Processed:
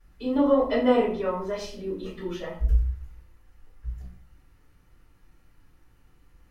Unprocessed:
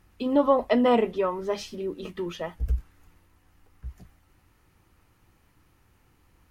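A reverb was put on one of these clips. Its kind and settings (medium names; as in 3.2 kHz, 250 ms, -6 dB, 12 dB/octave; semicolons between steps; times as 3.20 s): simulated room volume 48 m³, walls mixed, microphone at 3.4 m; trim -16.5 dB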